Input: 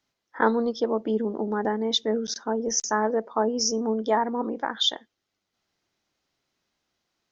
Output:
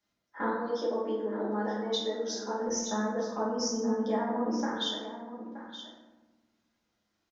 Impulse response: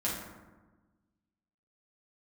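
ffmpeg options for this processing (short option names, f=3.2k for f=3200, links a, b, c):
-filter_complex "[0:a]asplit=3[a][b][c];[a]afade=t=out:st=0.51:d=0.02[d];[b]highpass=f=310:w=0.5412,highpass=f=310:w=1.3066,afade=t=in:st=0.51:d=0.02,afade=t=out:st=2.6:d=0.02[e];[c]afade=t=in:st=2.6:d=0.02[f];[d][e][f]amix=inputs=3:normalize=0,acompressor=threshold=-29dB:ratio=2.5,aecho=1:1:924:0.251[g];[1:a]atrim=start_sample=2205[h];[g][h]afir=irnorm=-1:irlink=0,volume=-7dB"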